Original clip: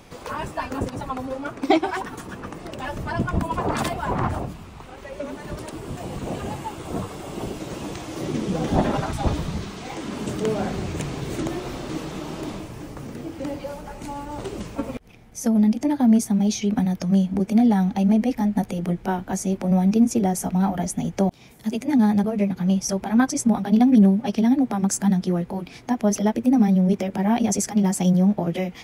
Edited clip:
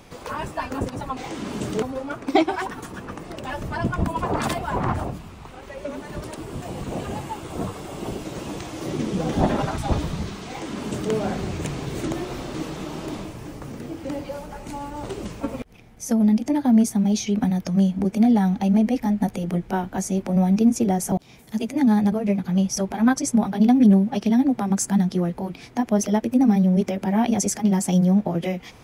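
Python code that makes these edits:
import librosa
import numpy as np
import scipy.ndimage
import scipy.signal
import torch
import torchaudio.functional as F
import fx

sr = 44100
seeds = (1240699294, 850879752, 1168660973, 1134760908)

y = fx.edit(x, sr, fx.duplicate(start_s=9.83, length_s=0.65, to_s=1.17),
    fx.cut(start_s=20.47, length_s=0.77), tone=tone)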